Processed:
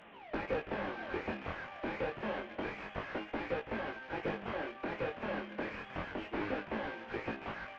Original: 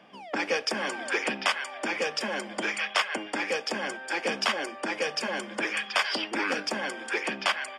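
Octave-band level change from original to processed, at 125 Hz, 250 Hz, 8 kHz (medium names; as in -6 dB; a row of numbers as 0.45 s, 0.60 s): +3.5 dB, -4.5 dB, under -30 dB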